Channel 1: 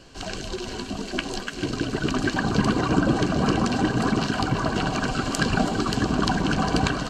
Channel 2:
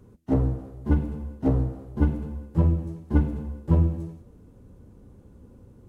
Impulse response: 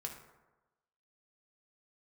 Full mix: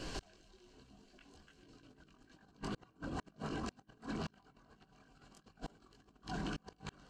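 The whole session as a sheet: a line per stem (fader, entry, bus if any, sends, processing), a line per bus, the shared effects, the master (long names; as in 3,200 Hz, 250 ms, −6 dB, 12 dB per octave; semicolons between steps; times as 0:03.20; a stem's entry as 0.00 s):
0.0 dB, 0.00 s, send −6 dB, multi-voice chorus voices 6, 0.48 Hz, delay 22 ms, depth 3.6 ms
−14.0 dB, 0.45 s, no send, low-pass with resonance 1,200 Hz, resonance Q 4.9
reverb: on, RT60 1.1 s, pre-delay 3 ms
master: compressor whose output falls as the input rises −28 dBFS, ratio −0.5; gate with flip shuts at −22 dBFS, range −36 dB; brickwall limiter −32 dBFS, peak gain reduction 11 dB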